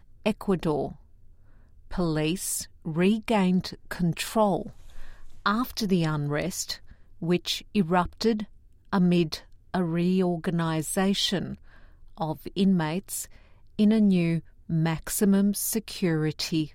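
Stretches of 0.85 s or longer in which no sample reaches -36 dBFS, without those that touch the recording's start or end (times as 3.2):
0.92–1.91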